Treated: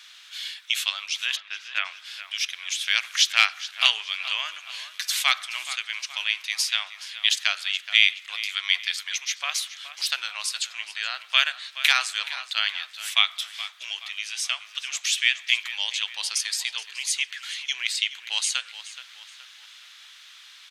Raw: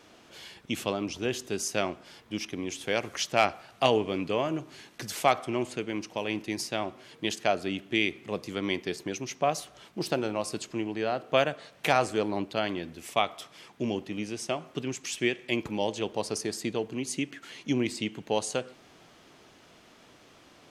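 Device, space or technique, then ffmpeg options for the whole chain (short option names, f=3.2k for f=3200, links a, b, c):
headphones lying on a table: -filter_complex "[0:a]highpass=f=1.5k:w=0.5412,highpass=f=1.5k:w=1.3066,equalizer=f=3.7k:t=o:w=0.49:g=8,asplit=3[a][b][c];[a]afade=t=out:st=1.35:d=0.02[d];[b]lowpass=f=2.7k:w=0.5412,lowpass=f=2.7k:w=1.3066,afade=t=in:st=1.35:d=0.02,afade=t=out:st=1.84:d=0.02[e];[c]afade=t=in:st=1.84:d=0.02[f];[d][e][f]amix=inputs=3:normalize=0,asplit=2[g][h];[h]adelay=423,lowpass=f=4.9k:p=1,volume=-13dB,asplit=2[i][j];[j]adelay=423,lowpass=f=4.9k:p=1,volume=0.47,asplit=2[k][l];[l]adelay=423,lowpass=f=4.9k:p=1,volume=0.47,asplit=2[m][n];[n]adelay=423,lowpass=f=4.9k:p=1,volume=0.47,asplit=2[o][p];[p]adelay=423,lowpass=f=4.9k:p=1,volume=0.47[q];[g][i][k][m][o][q]amix=inputs=6:normalize=0,volume=9dB"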